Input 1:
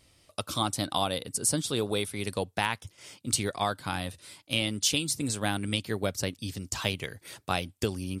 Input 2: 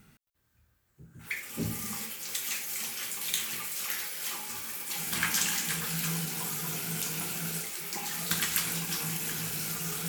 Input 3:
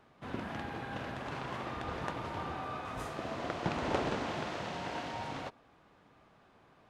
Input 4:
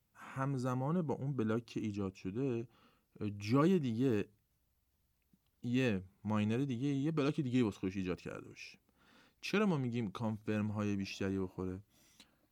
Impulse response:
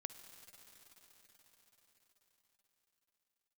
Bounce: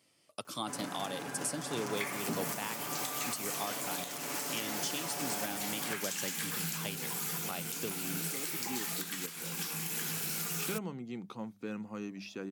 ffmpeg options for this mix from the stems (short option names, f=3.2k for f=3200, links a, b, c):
-filter_complex "[0:a]bandreject=f=3.8k:w=12,volume=-6.5dB,asplit=2[a][b];[1:a]acompressor=threshold=-37dB:ratio=3,adelay=700,volume=3dB[c];[2:a]aeval=exprs='0.0224*(abs(mod(val(0)/0.0224+3,4)-2)-1)':c=same,aexciter=amount=7.9:drive=3.4:freq=5.4k,aecho=1:1:7:0.65,adelay=450,volume=-0.5dB[d];[3:a]bandreject=f=50:t=h:w=6,bandreject=f=100:t=h:w=6,bandreject=f=150:t=h:w=6,bandreject=f=200:t=h:w=6,adelay=1150,volume=-2.5dB[e];[b]apad=whole_len=602478[f];[e][f]sidechaincompress=threshold=-44dB:ratio=8:attack=16:release=1220[g];[a][c][d][g]amix=inputs=4:normalize=0,highpass=f=150:w=0.5412,highpass=f=150:w=1.3066,alimiter=limit=-23dB:level=0:latency=1:release=379"